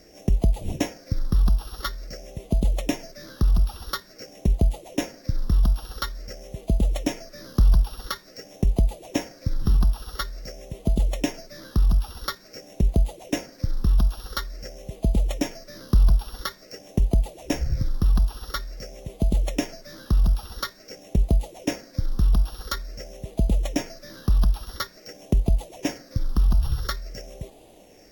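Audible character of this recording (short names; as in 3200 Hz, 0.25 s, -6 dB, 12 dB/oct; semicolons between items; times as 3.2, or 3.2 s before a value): a buzz of ramps at a fixed pitch in blocks of 8 samples; phasing stages 6, 0.48 Hz, lowest notch 540–1500 Hz; a quantiser's noise floor 10-bit, dither none; AAC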